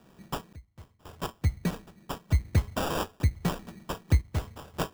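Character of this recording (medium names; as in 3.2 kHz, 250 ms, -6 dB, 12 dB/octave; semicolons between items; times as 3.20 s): phasing stages 2, 2.5 Hz, lowest notch 540–1300 Hz; random-step tremolo 1.9 Hz, depth 95%; aliases and images of a low sample rate 2.1 kHz, jitter 0%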